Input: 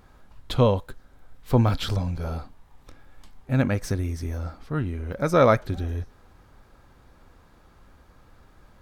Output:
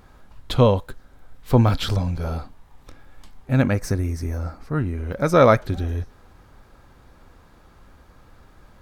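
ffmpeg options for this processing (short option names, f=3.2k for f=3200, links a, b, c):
-filter_complex "[0:a]asettb=1/sr,asplit=3[a][b][c];[a]atrim=end=3.734[d];[b]atrim=start=3.73:end=4.98,asetpts=PTS-STARTPTS,afade=t=in:d=0.004:c=qsin,afade=t=out:st=1.246:d=0.004:c=qsin,equalizer=f=3.3k:w=2.8:g=-10[e];[c]atrim=start=4.976[f];[d][e]acrossfade=d=0.004:c1=hsin:c2=qsin[g];[g][f]acrossfade=d=0.004:c1=qsin:c2=hsin,volume=3.5dB"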